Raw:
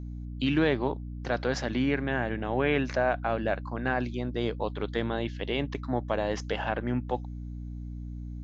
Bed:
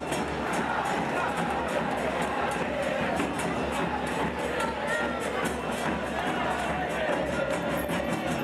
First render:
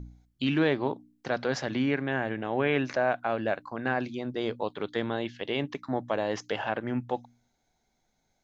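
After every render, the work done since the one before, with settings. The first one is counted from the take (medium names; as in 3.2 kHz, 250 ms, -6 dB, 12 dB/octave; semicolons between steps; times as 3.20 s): de-hum 60 Hz, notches 5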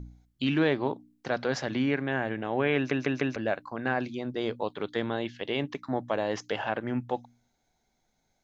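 2.76 s: stutter in place 0.15 s, 4 plays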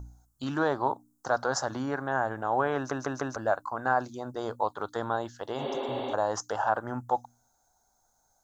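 5.61–6.11 s: spectral replace 200–4700 Hz before; FFT filter 100 Hz 0 dB, 170 Hz -8 dB, 420 Hz -4 dB, 840 Hz +8 dB, 1.4 kHz +7 dB, 2.3 kHz -20 dB, 7 kHz +12 dB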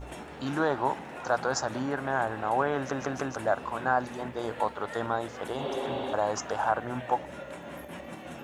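add bed -13 dB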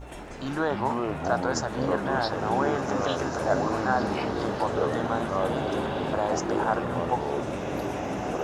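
ever faster or slower copies 149 ms, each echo -5 st, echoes 3; swelling reverb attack 1990 ms, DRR 6 dB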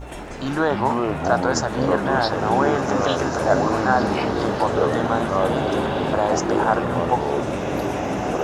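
trim +6.5 dB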